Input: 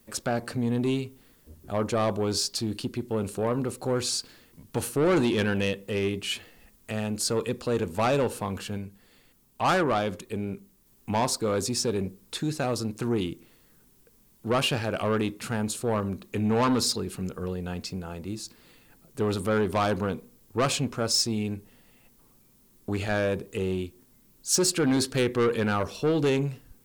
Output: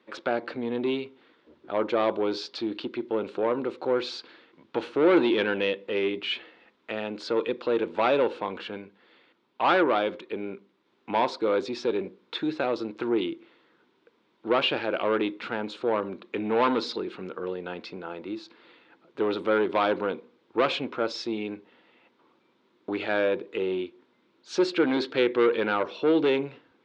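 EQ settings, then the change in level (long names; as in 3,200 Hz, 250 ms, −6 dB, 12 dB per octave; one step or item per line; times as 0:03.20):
dynamic equaliser 1,200 Hz, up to −4 dB, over −42 dBFS, Q 1.3
loudspeaker in its box 320–3,700 Hz, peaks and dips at 330 Hz +8 dB, 520 Hz +4 dB, 960 Hz +6 dB, 1,400 Hz +6 dB, 2,200 Hz +4 dB, 3,600 Hz +5 dB
0.0 dB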